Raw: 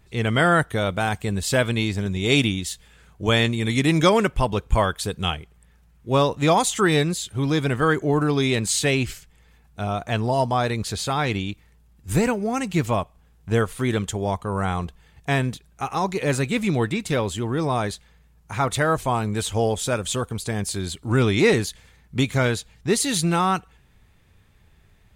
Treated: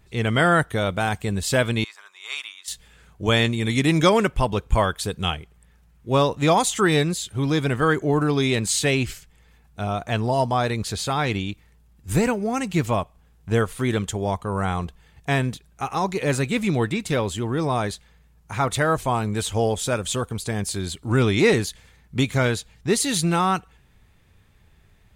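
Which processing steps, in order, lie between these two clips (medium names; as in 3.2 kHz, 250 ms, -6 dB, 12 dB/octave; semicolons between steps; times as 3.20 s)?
1.84–2.68 s: ladder high-pass 1 kHz, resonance 60%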